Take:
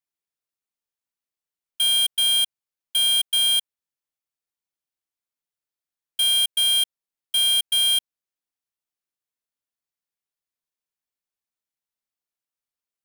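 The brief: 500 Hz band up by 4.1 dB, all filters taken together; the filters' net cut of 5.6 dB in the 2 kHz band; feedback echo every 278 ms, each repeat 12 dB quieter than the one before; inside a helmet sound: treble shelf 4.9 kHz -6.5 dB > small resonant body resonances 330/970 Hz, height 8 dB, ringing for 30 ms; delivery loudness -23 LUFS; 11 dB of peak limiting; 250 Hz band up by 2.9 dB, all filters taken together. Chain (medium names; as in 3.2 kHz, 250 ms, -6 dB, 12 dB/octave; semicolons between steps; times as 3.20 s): peaking EQ 250 Hz +4.5 dB; peaking EQ 500 Hz +6.5 dB; peaking EQ 2 kHz -6.5 dB; peak limiter -28 dBFS; treble shelf 4.9 kHz -6.5 dB; feedback delay 278 ms, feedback 25%, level -12 dB; small resonant body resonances 330/970 Hz, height 8 dB, ringing for 30 ms; trim +11 dB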